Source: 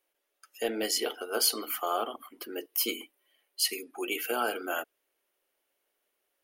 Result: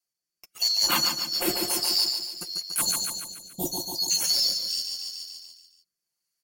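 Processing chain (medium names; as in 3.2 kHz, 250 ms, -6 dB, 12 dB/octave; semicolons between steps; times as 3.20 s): split-band scrambler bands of 4 kHz; waveshaping leveller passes 3; 2.81–4.11 s: elliptic band-stop 860–3700 Hz, stop band 40 dB; on a send: feedback delay 143 ms, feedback 57%, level -6 dB; on the sum: rotary cabinet horn 0.9 Hz; in parallel at -1 dB: compression, threshold -43 dBFS, peak gain reduction 23 dB; on the sum: comb 5.7 ms; trim -4 dB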